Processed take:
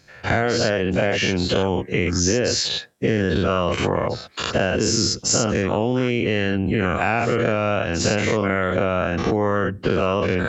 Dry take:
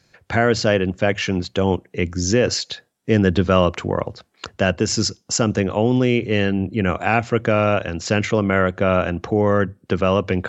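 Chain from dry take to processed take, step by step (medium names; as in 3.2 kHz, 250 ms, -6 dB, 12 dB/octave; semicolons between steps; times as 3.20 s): every event in the spectrogram widened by 120 ms; compression, threshold -16 dBFS, peak gain reduction 9 dB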